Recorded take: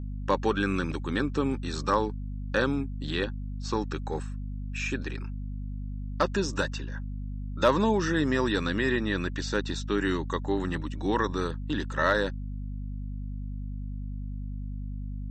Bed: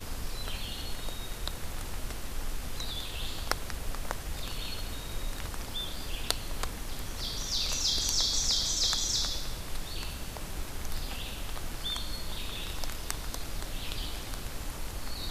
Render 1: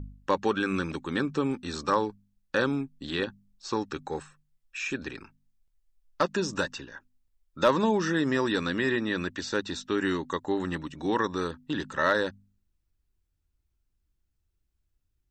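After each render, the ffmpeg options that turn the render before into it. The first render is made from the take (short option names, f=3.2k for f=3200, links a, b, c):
-af "bandreject=f=50:t=h:w=4,bandreject=f=100:t=h:w=4,bandreject=f=150:t=h:w=4,bandreject=f=200:t=h:w=4,bandreject=f=250:t=h:w=4"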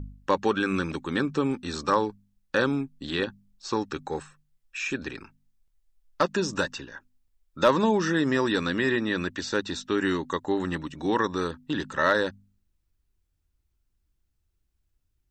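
-af "volume=2dB"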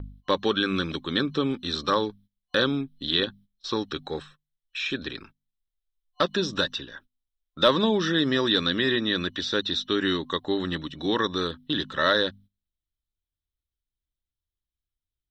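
-af "agate=range=-16dB:threshold=-49dB:ratio=16:detection=peak,superequalizer=9b=0.562:13b=3.55:15b=0.282"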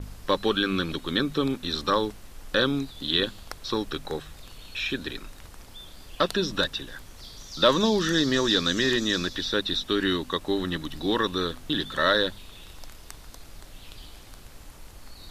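-filter_complex "[1:a]volume=-8.5dB[a];[0:a][a]amix=inputs=2:normalize=0"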